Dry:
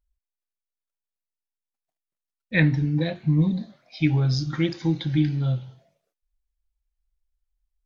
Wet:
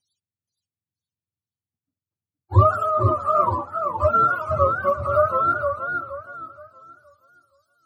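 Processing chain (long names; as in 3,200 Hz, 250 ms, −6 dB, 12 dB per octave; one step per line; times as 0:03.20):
frequency axis turned over on the octave scale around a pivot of 430 Hz
feedback echo with a swinging delay time 471 ms, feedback 32%, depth 132 cents, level −6 dB
level +4.5 dB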